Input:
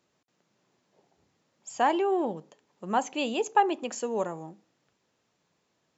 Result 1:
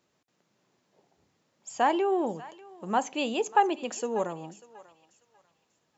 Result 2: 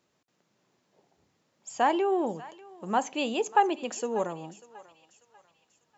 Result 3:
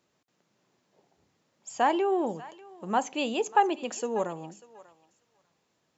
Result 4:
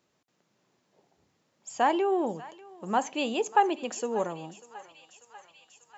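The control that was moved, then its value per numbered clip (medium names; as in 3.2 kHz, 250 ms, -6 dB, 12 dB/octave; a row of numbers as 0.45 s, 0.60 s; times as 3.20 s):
thinning echo, feedback: 30%, 46%, 15%, 83%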